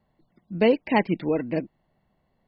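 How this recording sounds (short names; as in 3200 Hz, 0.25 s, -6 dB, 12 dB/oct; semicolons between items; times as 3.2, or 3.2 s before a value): noise floor -72 dBFS; spectral tilt -5.0 dB/oct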